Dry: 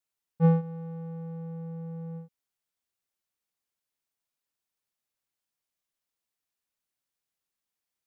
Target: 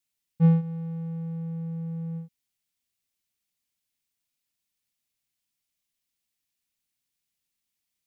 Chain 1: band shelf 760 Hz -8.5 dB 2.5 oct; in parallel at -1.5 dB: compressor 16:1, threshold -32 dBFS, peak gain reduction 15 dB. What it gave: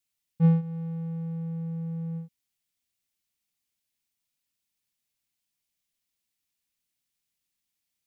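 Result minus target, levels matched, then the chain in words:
compressor: peak gain reduction +6.5 dB
band shelf 760 Hz -8.5 dB 2.5 oct; in parallel at -1.5 dB: compressor 16:1, threshold -25 dBFS, peak gain reduction 8.5 dB

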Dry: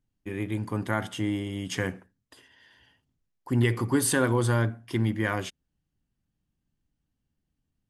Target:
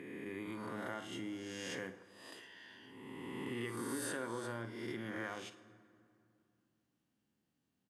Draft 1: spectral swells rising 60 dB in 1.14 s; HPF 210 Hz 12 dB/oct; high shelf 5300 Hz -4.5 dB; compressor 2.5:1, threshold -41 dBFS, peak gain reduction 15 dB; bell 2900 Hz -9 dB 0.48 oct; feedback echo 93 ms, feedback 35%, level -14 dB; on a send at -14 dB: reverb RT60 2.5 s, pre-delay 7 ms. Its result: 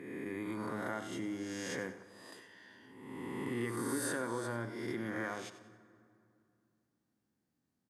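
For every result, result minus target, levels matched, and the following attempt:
echo 41 ms late; 4000 Hz band -5.0 dB; compressor: peak gain reduction -4 dB
spectral swells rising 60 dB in 1.14 s; HPF 210 Hz 12 dB/oct; high shelf 5300 Hz -4.5 dB; compressor 2.5:1, threshold -41 dBFS, peak gain reduction 15 dB; bell 2900 Hz -9 dB 0.48 oct; feedback echo 52 ms, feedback 35%, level -14 dB; on a send at -14 dB: reverb RT60 2.5 s, pre-delay 7 ms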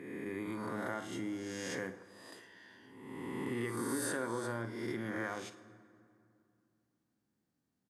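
4000 Hz band -5.0 dB; compressor: peak gain reduction -4 dB
spectral swells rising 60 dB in 1.14 s; HPF 210 Hz 12 dB/oct; high shelf 5300 Hz -4.5 dB; compressor 2.5:1, threshold -41 dBFS, peak gain reduction 15 dB; feedback echo 52 ms, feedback 35%, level -14 dB; on a send at -14 dB: reverb RT60 2.5 s, pre-delay 7 ms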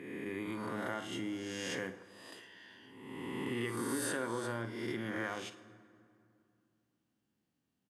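compressor: peak gain reduction -4 dB
spectral swells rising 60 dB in 1.14 s; HPF 210 Hz 12 dB/oct; high shelf 5300 Hz -4.5 dB; compressor 2.5:1, threshold -48 dBFS, peak gain reduction 19 dB; feedback echo 52 ms, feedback 35%, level -14 dB; on a send at -14 dB: reverb RT60 2.5 s, pre-delay 7 ms

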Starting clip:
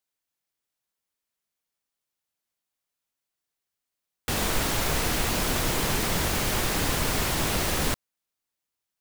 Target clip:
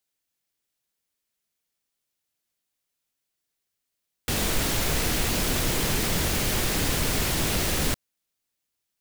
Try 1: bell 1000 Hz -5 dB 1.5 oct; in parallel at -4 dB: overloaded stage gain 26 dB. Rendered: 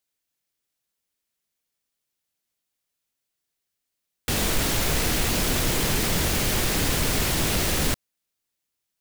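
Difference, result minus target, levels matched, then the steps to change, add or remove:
overloaded stage: distortion -5 dB
change: overloaded stage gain 34.5 dB

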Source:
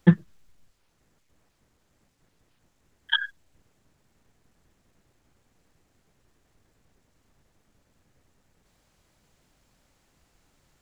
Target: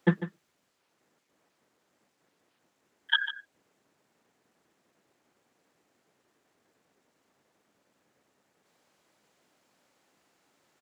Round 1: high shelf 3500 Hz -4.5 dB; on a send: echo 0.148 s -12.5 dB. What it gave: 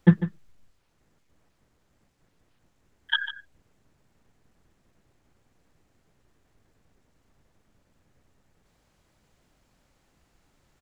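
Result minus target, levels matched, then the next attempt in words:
250 Hz band +5.0 dB
HPF 280 Hz 12 dB/oct; high shelf 3500 Hz -4.5 dB; on a send: echo 0.148 s -12.5 dB

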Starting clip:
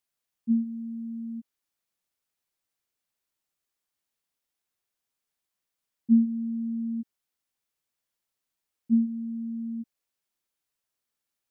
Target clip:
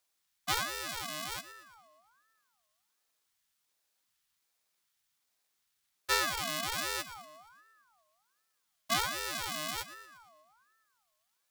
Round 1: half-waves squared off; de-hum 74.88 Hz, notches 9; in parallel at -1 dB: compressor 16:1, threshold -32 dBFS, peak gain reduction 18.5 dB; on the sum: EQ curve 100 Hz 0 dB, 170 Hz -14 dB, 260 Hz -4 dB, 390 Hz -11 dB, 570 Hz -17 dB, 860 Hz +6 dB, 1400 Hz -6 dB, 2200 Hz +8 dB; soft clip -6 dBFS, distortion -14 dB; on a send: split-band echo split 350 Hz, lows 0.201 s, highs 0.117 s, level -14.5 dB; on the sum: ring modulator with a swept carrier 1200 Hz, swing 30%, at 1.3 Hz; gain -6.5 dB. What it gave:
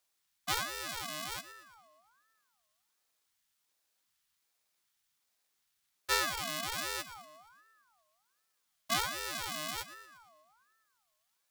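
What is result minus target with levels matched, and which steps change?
compressor: peak gain reduction +8.5 dB
change: compressor 16:1, threshold -23 dBFS, peak gain reduction 10 dB

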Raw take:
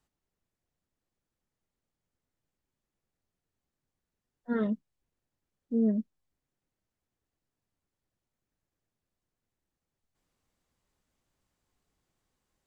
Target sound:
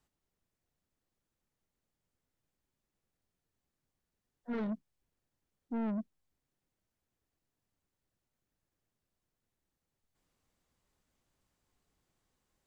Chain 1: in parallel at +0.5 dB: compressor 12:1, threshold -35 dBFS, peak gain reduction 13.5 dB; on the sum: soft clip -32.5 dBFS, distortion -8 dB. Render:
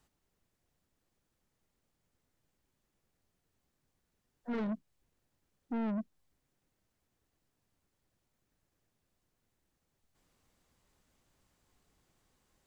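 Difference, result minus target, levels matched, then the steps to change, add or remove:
compressor: peak gain reduction +13.5 dB
remove: compressor 12:1, threshold -35 dBFS, peak gain reduction 13.5 dB

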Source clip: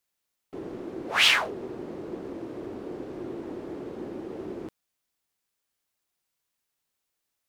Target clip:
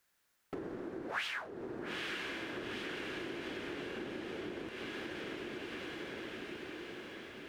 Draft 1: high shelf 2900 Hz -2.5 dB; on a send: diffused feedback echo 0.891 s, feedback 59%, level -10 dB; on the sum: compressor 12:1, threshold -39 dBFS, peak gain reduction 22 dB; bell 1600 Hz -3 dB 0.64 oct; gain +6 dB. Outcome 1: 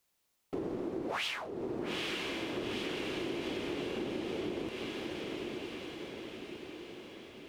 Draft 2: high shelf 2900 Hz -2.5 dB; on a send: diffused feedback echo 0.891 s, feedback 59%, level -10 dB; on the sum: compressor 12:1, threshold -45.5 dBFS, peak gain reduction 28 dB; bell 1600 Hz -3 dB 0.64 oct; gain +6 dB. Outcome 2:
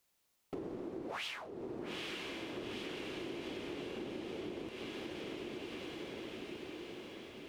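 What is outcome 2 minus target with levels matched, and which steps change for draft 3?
2000 Hz band -4.5 dB
change: bell 1600 Hz +8 dB 0.64 oct

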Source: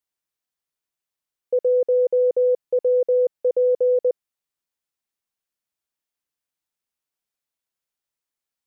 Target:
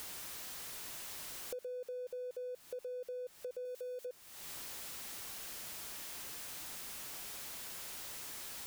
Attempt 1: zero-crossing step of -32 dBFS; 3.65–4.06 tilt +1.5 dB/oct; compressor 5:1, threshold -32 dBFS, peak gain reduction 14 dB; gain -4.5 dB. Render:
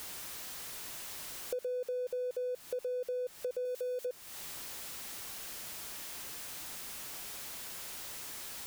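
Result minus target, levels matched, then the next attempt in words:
compressor: peak gain reduction -7 dB
zero-crossing step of -32 dBFS; 3.65–4.06 tilt +1.5 dB/oct; compressor 5:1, threshold -40.5 dBFS, peak gain reduction 21 dB; gain -4.5 dB

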